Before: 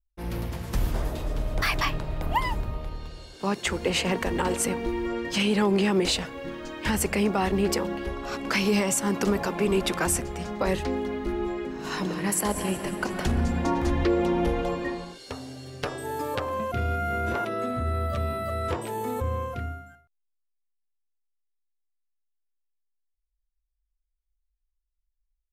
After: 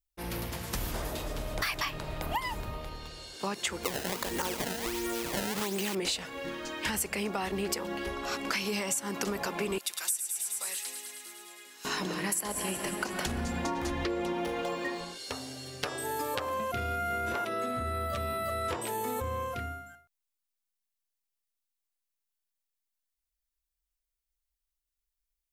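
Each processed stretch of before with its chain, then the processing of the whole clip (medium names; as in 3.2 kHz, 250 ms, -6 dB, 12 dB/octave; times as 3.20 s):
3.83–5.95 s: decimation with a swept rate 22×, swing 160% 1.4 Hz + feedback echo behind a high-pass 72 ms, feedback 79%, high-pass 1.9 kHz, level -12.5 dB
9.78–11.85 s: differentiator + feedback echo behind a high-pass 105 ms, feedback 75%, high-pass 1.9 kHz, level -7.5 dB
14.33–15.01 s: median filter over 3 samples + high-pass 180 Hz 6 dB/octave
whole clip: tilt EQ +2 dB/octave; compression, threshold -29 dBFS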